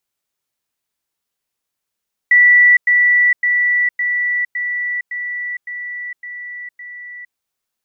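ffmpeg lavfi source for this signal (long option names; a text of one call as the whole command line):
ffmpeg -f lavfi -i "aevalsrc='pow(10,(-6-3*floor(t/0.56))/20)*sin(2*PI*1960*t)*clip(min(mod(t,0.56),0.46-mod(t,0.56))/0.005,0,1)':duration=5.04:sample_rate=44100" out.wav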